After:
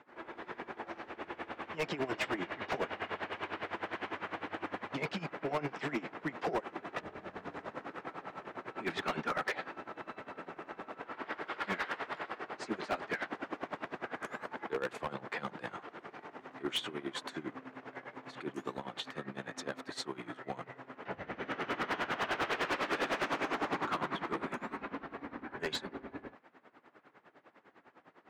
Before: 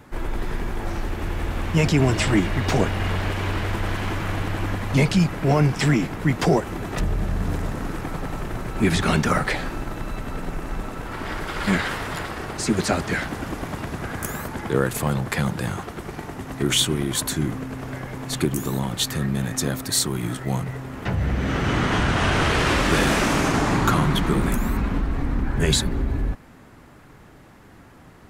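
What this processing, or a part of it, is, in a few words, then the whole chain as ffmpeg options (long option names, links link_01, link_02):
helicopter radio: -af "highpass=390,lowpass=2800,aeval=exprs='val(0)*pow(10,-18*(0.5-0.5*cos(2*PI*9.9*n/s))/20)':channel_layout=same,asoftclip=type=hard:threshold=-24dB,volume=-4dB"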